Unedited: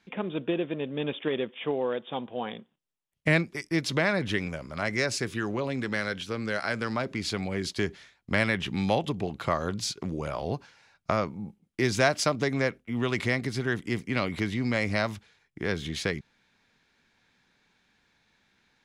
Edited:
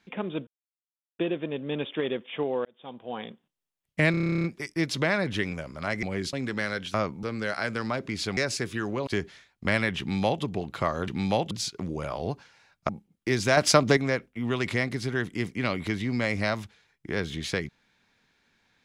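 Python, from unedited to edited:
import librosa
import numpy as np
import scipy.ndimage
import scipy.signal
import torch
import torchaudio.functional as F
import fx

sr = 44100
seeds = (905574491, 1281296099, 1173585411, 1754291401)

y = fx.edit(x, sr, fx.insert_silence(at_s=0.47, length_s=0.72),
    fx.fade_in_span(start_s=1.93, length_s=0.62),
    fx.stutter(start_s=3.39, slice_s=0.03, count=12),
    fx.swap(start_s=4.98, length_s=0.7, other_s=7.43, other_length_s=0.3),
    fx.duplicate(start_s=8.66, length_s=0.43, to_s=9.74),
    fx.move(start_s=11.12, length_s=0.29, to_s=6.29),
    fx.clip_gain(start_s=12.09, length_s=0.4, db=6.5), tone=tone)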